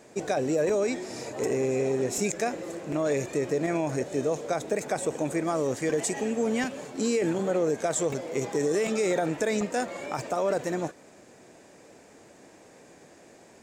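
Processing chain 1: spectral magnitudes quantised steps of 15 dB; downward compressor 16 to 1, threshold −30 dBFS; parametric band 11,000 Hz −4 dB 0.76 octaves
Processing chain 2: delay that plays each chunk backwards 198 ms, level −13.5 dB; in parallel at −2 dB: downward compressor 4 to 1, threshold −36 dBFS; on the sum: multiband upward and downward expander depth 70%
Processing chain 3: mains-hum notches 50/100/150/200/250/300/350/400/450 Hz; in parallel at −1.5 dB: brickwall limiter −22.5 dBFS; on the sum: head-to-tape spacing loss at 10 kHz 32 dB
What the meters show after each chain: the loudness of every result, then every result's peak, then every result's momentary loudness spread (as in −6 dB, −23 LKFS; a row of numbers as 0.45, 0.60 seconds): −35.0, −26.0, −27.0 LKFS; −20.0, −6.5, −14.5 dBFS; 19, 7, 6 LU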